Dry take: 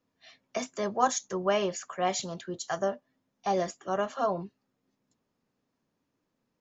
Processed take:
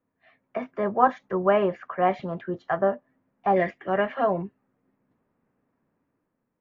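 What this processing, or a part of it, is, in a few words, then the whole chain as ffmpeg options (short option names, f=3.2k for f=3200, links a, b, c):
action camera in a waterproof case: -filter_complex "[0:a]asettb=1/sr,asplit=3[a][b][c];[a]atrim=end=3.564[d];[b]atrim=start=3.56:end=4.42,asetpts=PTS-STARTPTS,afade=t=in:d=0.004:c=qsin,afade=t=out:st=0.856:d=0.004:c=qsin,highshelf=f=1.6k:t=q:w=3:g=6.5[e];[c]atrim=start=4.416[f];[d][e]acrossfade=d=0.004:c1=hsin:c2=qsin[g];[g][f]acrossfade=d=0.004:c1=qsin:c2=hsin,lowpass=f=2.1k:w=0.5412,lowpass=f=2.1k:w=1.3066,dynaudnorm=f=190:g=7:m=6.5dB" -ar 22050 -c:a aac -b:a 96k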